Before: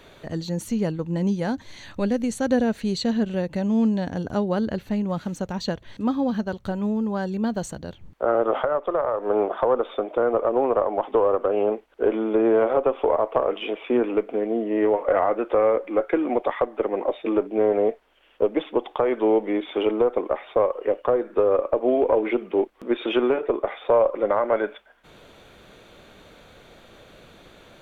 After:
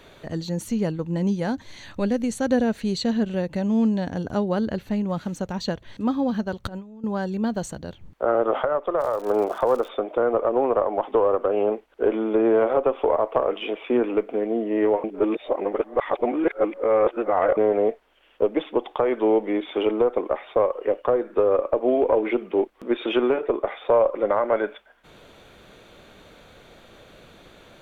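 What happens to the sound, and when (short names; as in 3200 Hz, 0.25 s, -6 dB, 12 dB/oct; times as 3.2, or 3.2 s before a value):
6.64–7.04 negative-ratio compressor -33 dBFS, ratio -0.5
8.98–9.87 crackle 200/s -33 dBFS
15.04–17.57 reverse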